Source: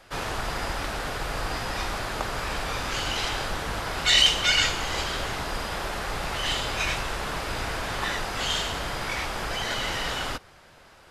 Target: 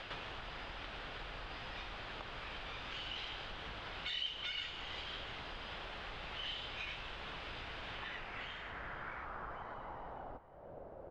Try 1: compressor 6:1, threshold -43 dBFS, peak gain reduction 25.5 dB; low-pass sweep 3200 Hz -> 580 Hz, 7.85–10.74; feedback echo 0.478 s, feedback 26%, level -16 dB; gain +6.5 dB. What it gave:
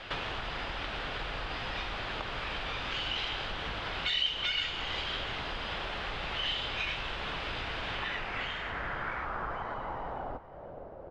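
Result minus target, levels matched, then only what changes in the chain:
compressor: peak gain reduction -9.5 dB
change: compressor 6:1, threshold -54.5 dBFS, peak gain reduction 35 dB

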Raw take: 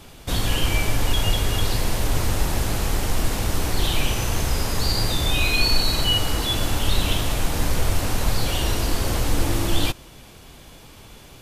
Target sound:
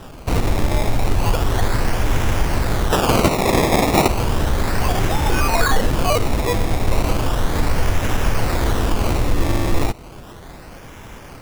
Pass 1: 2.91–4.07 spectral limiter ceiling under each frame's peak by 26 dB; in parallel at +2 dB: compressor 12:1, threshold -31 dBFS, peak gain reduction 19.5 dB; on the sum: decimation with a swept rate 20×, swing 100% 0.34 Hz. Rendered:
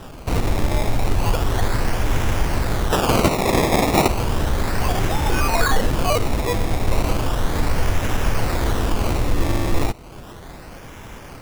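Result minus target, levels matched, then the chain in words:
compressor: peak gain reduction +6.5 dB
2.91–4.07 spectral limiter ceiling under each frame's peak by 26 dB; in parallel at +2 dB: compressor 12:1, threshold -24 dBFS, peak gain reduction 13 dB; on the sum: decimation with a swept rate 20×, swing 100% 0.34 Hz

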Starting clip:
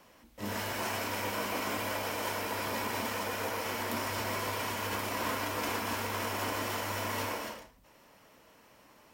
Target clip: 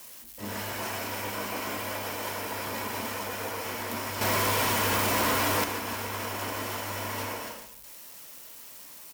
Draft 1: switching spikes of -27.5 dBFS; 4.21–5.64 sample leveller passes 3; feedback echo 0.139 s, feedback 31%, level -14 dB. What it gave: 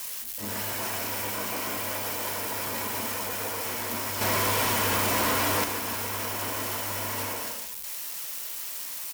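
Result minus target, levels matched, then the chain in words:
switching spikes: distortion +10 dB
switching spikes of -38.5 dBFS; 4.21–5.64 sample leveller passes 3; feedback echo 0.139 s, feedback 31%, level -14 dB

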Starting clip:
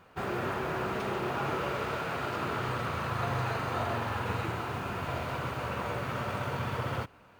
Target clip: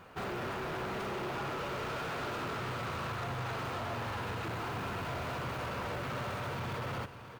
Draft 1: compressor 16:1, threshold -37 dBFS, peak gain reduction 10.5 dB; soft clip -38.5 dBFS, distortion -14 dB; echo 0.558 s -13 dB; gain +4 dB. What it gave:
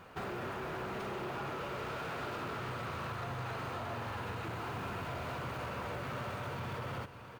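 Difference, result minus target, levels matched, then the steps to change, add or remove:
compressor: peak gain reduction +5.5 dB
change: compressor 16:1, threshold -31 dBFS, peak gain reduction 5 dB

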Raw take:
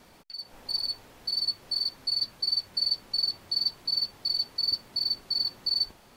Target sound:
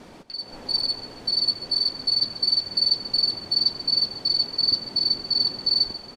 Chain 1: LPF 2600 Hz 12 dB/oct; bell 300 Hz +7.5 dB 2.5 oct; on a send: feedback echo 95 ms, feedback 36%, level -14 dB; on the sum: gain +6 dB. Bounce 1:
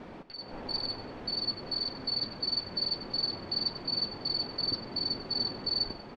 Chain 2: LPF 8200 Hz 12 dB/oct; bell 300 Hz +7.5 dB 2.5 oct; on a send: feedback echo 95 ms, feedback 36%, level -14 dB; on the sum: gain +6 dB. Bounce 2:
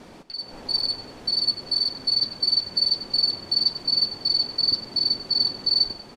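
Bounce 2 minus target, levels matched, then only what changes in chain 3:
echo 44 ms early
change: feedback echo 0.139 s, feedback 36%, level -14 dB

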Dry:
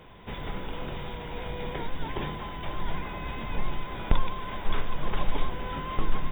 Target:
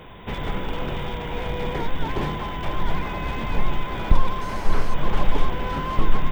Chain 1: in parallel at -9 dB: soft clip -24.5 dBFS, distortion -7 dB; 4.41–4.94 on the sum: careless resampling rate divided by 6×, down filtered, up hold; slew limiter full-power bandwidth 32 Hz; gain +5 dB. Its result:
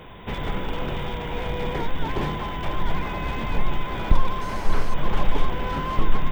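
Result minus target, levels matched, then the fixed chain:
soft clip: distortion +11 dB
in parallel at -9 dB: soft clip -13.5 dBFS, distortion -19 dB; 4.41–4.94 on the sum: careless resampling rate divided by 6×, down filtered, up hold; slew limiter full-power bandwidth 32 Hz; gain +5 dB

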